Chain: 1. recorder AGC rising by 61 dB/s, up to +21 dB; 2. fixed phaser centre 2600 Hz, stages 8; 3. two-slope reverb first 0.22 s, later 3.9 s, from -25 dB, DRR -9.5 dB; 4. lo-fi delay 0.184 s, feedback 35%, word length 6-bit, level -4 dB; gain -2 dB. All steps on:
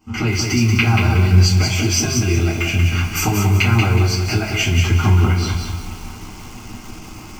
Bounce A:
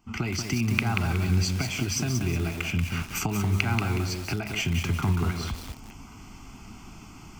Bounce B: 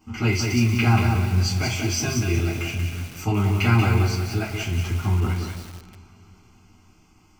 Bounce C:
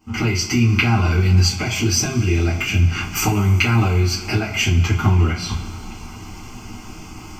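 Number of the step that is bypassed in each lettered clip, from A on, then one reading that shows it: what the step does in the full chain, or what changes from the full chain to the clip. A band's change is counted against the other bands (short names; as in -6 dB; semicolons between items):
3, crest factor change +7.5 dB; 1, momentary loudness spread change -11 LU; 4, loudness change -1.5 LU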